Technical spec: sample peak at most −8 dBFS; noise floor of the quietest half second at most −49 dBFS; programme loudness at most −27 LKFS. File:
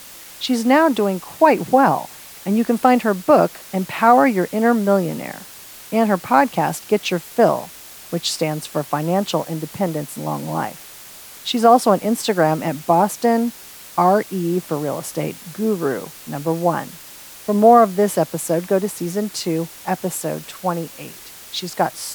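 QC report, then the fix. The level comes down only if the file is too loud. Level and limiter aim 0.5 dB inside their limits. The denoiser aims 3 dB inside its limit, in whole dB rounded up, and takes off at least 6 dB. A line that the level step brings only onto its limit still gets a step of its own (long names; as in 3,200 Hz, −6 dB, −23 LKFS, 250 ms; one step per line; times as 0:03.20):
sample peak −1.5 dBFS: out of spec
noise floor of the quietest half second −40 dBFS: out of spec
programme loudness −19.0 LKFS: out of spec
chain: broadband denoise 6 dB, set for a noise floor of −40 dBFS
level −8.5 dB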